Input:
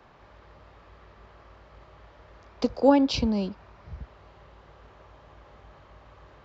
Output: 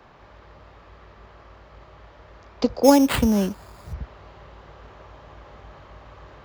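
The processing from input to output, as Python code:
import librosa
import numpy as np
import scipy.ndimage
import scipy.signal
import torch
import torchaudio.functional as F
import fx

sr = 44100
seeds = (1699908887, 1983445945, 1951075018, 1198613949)

p1 = fx.rider(x, sr, range_db=10, speed_s=0.5)
p2 = x + F.gain(torch.from_numpy(p1), -1.0).numpy()
y = fx.sample_hold(p2, sr, seeds[0], rate_hz=5900.0, jitter_pct=0, at=(2.83, 3.92), fade=0.02)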